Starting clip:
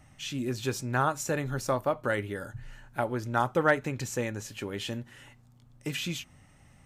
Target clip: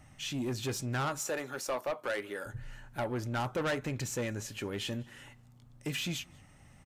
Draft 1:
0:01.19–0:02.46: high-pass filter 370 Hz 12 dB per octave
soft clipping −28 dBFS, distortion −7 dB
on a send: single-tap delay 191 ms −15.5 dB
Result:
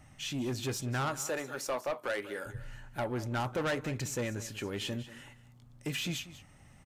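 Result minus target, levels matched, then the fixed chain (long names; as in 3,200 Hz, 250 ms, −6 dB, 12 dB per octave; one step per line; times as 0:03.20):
echo-to-direct +12 dB
0:01.19–0:02.46: high-pass filter 370 Hz 12 dB per octave
soft clipping −28 dBFS, distortion −7 dB
on a send: single-tap delay 191 ms −27.5 dB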